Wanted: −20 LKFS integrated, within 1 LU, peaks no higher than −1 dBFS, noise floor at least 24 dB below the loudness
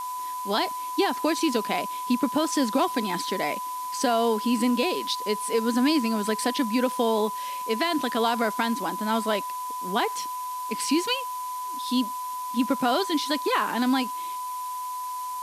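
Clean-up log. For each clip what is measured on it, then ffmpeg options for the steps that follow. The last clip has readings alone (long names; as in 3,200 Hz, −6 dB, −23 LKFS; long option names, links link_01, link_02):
interfering tone 1,000 Hz; level of the tone −30 dBFS; background noise floor −33 dBFS; target noise floor −50 dBFS; integrated loudness −26.0 LKFS; sample peak −10.5 dBFS; target loudness −20.0 LKFS
→ -af "bandreject=frequency=1000:width=30"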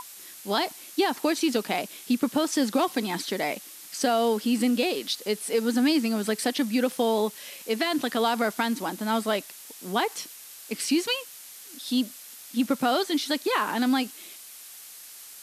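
interfering tone none found; background noise floor −45 dBFS; target noise floor −51 dBFS
→ -af "afftdn=noise_reduction=6:noise_floor=-45"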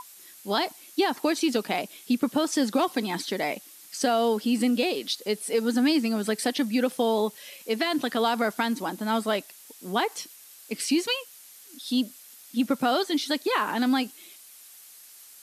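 background noise floor −50 dBFS; target noise floor −51 dBFS
→ -af "afftdn=noise_reduction=6:noise_floor=-50"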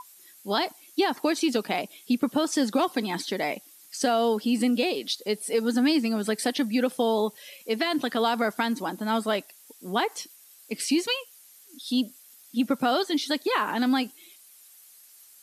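background noise floor −53 dBFS; integrated loudness −26.5 LKFS; sample peak −11.0 dBFS; target loudness −20.0 LKFS
→ -af "volume=6.5dB"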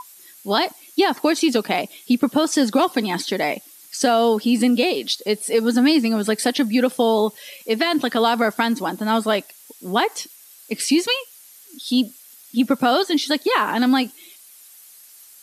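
integrated loudness −20.0 LKFS; sample peak −4.5 dBFS; background noise floor −47 dBFS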